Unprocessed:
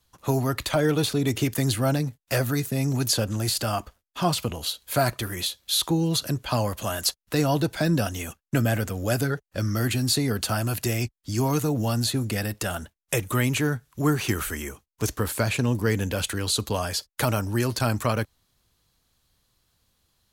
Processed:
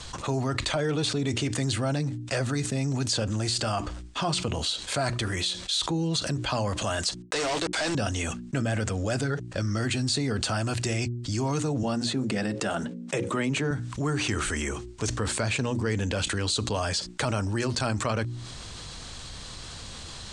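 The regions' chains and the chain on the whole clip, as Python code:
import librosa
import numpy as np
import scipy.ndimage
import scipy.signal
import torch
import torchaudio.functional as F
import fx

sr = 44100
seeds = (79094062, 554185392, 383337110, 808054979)

y = fx.chain(x, sr, fx.highpass(hz=460.0, slope=12),
    fx.quant_companded(bits=2), at=(7.22, 7.95))
y = fx.chain(y, sr, fx.highpass(hz=160.0, slope=24),
    fx.tilt_eq(slope=-2.0),
    fx.hum_notches(base_hz=60, count=9), at=(11.83, 13.71))
y = scipy.signal.sosfilt(scipy.signal.ellip(4, 1.0, 50, 8600.0, 'lowpass', fs=sr, output='sos'), y)
y = fx.hum_notches(y, sr, base_hz=60, count=6)
y = fx.env_flatten(y, sr, amount_pct=70)
y = y * 10.0 ** (-5.5 / 20.0)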